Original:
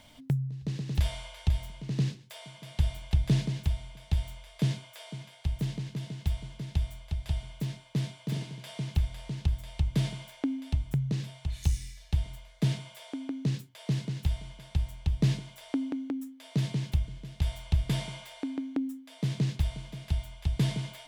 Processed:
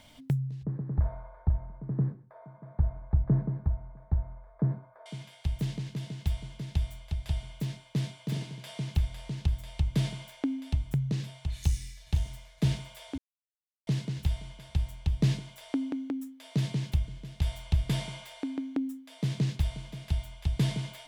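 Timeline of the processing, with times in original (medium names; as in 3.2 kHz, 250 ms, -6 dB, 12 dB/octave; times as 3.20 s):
0.63–5.06 s: inverse Chebyshev low-pass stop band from 2.7 kHz
11.55–12.49 s: echo throw 510 ms, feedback 50%, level -11 dB
13.18–13.87 s: mute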